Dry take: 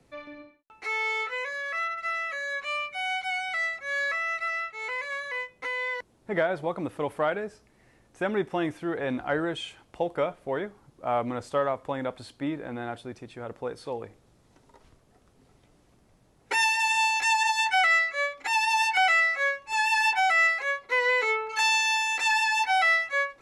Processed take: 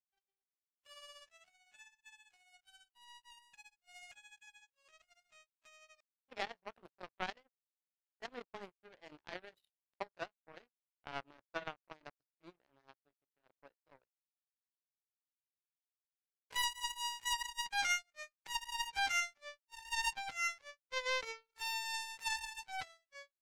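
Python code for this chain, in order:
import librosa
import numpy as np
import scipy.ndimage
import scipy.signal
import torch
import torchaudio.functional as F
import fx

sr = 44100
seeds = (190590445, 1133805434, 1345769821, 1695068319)

y = fx.pitch_glide(x, sr, semitones=5.0, runs='ending unshifted')
y = fx.power_curve(y, sr, exponent=3.0)
y = y * librosa.db_to_amplitude(-5.0)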